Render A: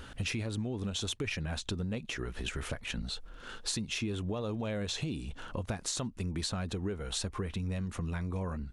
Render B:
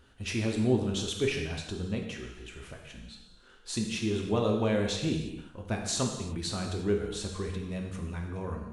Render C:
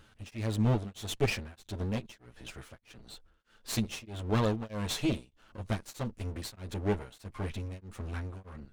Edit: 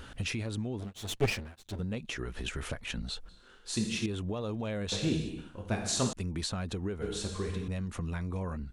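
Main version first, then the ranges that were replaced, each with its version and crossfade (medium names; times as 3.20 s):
A
0.80–1.79 s: from C
3.29–4.06 s: from B
4.92–6.13 s: from B
7.02–7.68 s: from B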